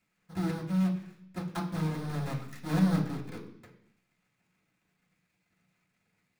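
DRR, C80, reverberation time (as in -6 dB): -5.5 dB, 11.5 dB, 0.70 s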